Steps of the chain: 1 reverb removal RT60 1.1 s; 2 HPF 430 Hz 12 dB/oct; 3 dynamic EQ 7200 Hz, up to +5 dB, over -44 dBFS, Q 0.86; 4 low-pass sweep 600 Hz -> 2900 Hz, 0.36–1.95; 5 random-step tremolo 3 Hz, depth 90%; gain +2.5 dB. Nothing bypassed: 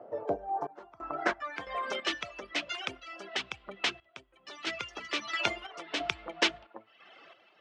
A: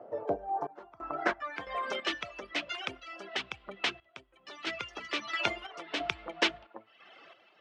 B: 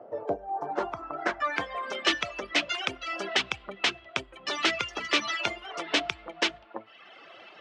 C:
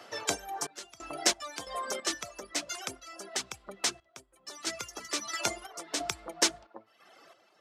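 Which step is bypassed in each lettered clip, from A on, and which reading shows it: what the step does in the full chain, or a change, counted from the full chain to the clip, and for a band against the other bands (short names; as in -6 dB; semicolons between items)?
3, momentary loudness spread change +3 LU; 5, momentary loudness spread change -8 LU; 4, 8 kHz band +16.0 dB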